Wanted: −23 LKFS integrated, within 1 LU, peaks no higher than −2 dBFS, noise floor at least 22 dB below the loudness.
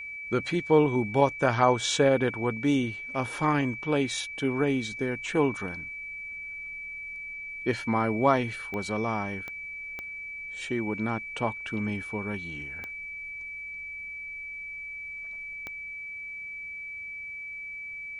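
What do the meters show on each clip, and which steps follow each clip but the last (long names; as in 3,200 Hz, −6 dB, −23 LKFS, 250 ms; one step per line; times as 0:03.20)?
number of clicks 5; interfering tone 2,300 Hz; level of the tone −36 dBFS; integrated loudness −29.5 LKFS; sample peak −7.5 dBFS; target loudness −23.0 LKFS
→ click removal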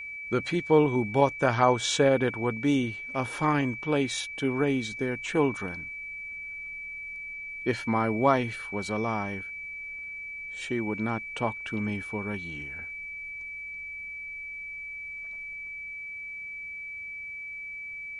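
number of clicks 0; interfering tone 2,300 Hz; level of the tone −36 dBFS
→ notch filter 2,300 Hz, Q 30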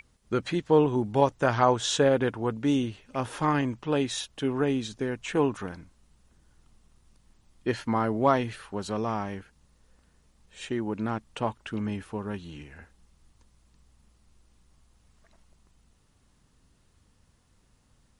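interfering tone none found; integrated loudness −28.0 LKFS; sample peak −7.5 dBFS; target loudness −23.0 LKFS
→ level +5 dB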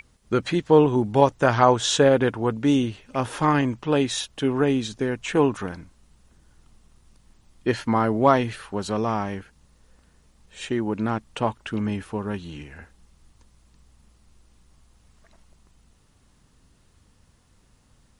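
integrated loudness −23.0 LKFS; sample peak −2.5 dBFS; background noise floor −60 dBFS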